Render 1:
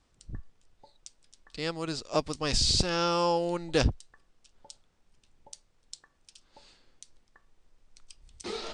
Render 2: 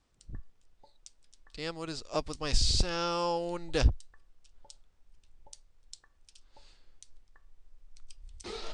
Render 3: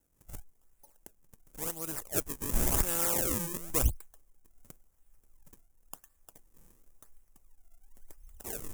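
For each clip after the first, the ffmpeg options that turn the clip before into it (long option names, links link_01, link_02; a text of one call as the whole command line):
ffmpeg -i in.wav -af "asubboost=boost=4:cutoff=84,volume=-4dB" out.wav
ffmpeg -i in.wav -af "acrusher=samples=36:mix=1:aa=0.000001:lfo=1:lforange=57.6:lforate=0.94,aexciter=amount=6.2:drive=7:freq=6100,volume=-4dB" out.wav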